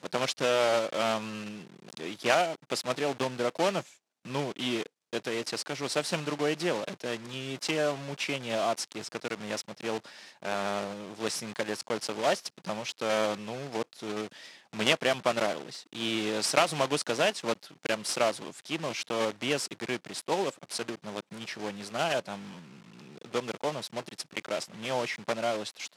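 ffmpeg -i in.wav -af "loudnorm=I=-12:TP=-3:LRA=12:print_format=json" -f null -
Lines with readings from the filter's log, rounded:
"input_i" : "-31.6",
"input_tp" : "-5.9",
"input_lra" : "5.6",
"input_thresh" : "-41.8",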